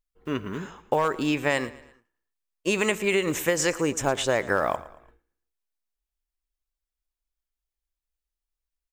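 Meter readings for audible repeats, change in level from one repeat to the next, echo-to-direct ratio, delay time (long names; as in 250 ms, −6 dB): 3, −7.5 dB, −17.0 dB, 113 ms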